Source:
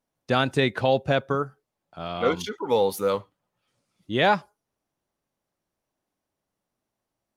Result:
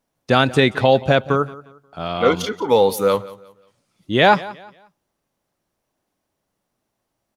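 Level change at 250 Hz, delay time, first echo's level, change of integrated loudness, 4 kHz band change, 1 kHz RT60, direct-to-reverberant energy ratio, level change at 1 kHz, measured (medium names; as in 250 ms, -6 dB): +7.0 dB, 178 ms, -19.0 dB, +7.0 dB, +7.0 dB, no reverb, no reverb, +7.0 dB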